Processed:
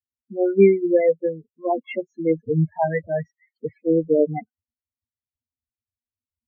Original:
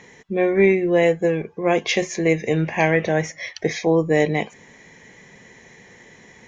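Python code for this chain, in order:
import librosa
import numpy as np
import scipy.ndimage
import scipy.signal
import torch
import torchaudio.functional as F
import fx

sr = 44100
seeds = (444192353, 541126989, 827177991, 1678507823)

y = fx.bin_expand(x, sr, power=3.0)
y = fx.env_lowpass(y, sr, base_hz=820.0, full_db=-17.0)
y = fx.peak_eq(y, sr, hz=5900.0, db=-14.0, octaves=2.6)
y = fx.spec_topn(y, sr, count=8)
y = F.gain(torch.from_numpy(y), 5.0).numpy()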